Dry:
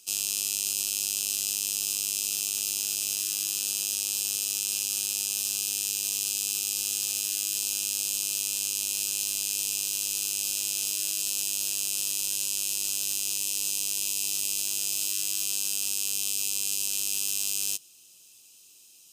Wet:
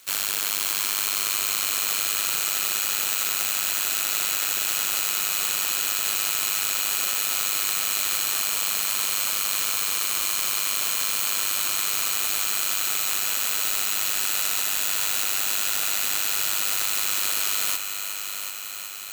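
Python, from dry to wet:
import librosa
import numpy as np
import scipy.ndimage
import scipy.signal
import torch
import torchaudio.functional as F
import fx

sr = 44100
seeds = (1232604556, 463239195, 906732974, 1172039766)

y = fx.bit_reversed(x, sr, seeds[0], block=64)
y = fx.echo_heads(y, sr, ms=371, heads='first and second', feedback_pct=68, wet_db=-11.5)
y = y * 10.0 ** (3.5 / 20.0)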